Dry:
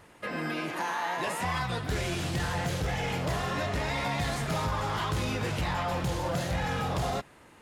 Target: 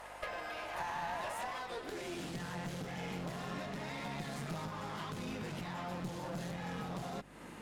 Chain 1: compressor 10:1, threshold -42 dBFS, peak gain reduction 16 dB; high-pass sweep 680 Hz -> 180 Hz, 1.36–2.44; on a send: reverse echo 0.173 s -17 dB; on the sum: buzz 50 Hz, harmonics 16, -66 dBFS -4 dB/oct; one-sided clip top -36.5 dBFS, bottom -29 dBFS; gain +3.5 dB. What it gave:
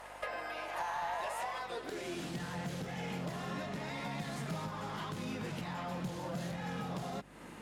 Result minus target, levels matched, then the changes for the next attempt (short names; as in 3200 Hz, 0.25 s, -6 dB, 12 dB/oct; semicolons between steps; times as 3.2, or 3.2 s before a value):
one-sided clip: distortion -11 dB
change: one-sided clip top -45.5 dBFS, bottom -29 dBFS